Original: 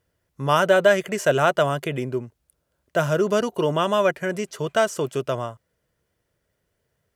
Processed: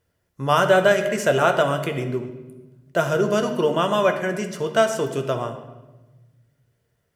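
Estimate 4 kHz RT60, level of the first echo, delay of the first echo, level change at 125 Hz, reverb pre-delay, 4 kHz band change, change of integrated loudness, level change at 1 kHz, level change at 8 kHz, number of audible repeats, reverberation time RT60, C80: 0.90 s, no echo audible, no echo audible, +0.5 dB, 8 ms, +1.0 dB, +1.0 dB, +1.5 dB, +1.0 dB, no echo audible, 1.1 s, 11.0 dB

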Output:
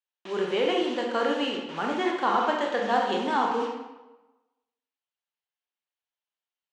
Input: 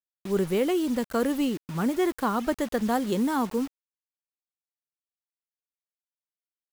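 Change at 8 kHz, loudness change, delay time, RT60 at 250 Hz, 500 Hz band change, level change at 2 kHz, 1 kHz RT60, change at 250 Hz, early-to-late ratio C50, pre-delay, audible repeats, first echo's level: can't be measured, +0.5 dB, no echo audible, 1.0 s, +1.0 dB, +5.5 dB, 1.1 s, −5.5 dB, 2.5 dB, 19 ms, no echo audible, no echo audible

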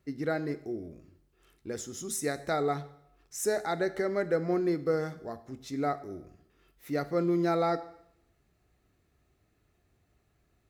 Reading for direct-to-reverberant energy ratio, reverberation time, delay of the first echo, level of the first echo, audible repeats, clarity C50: 12.0 dB, 0.75 s, no echo audible, no echo audible, no echo audible, 15.5 dB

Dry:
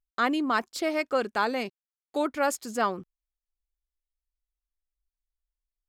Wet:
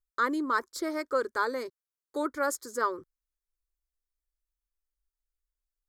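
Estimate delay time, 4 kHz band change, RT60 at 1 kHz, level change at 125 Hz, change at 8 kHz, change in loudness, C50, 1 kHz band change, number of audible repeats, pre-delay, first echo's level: no echo audible, −7.0 dB, no reverb audible, below −15 dB, −1.5 dB, −2.5 dB, no reverb audible, −2.5 dB, no echo audible, no reverb audible, no echo audible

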